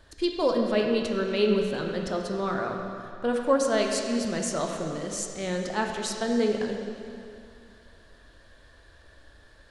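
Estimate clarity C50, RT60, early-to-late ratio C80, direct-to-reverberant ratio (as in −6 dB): 3.0 dB, 2.5 s, 4.0 dB, 1.5 dB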